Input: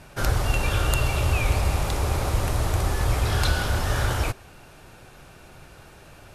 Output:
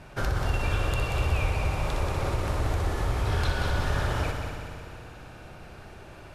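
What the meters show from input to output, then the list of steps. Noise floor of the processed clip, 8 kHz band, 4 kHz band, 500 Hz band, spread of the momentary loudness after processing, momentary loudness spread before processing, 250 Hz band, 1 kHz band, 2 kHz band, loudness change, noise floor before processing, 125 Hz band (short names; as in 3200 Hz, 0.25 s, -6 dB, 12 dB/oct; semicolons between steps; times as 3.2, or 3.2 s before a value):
-46 dBFS, -10.0 dB, -6.0 dB, -2.5 dB, 19 LU, 3 LU, -2.5 dB, -3.0 dB, -3.5 dB, -4.0 dB, -49 dBFS, -3.5 dB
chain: LPF 3200 Hz 6 dB/oct; compressor 2.5:1, threshold -26 dBFS, peak gain reduction 7 dB; on a send: multi-head echo 61 ms, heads first and third, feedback 72%, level -8 dB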